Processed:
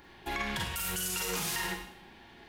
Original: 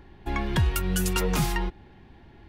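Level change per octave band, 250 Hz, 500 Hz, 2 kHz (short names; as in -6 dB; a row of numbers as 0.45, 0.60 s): -12.0, -9.0, -1.5 dB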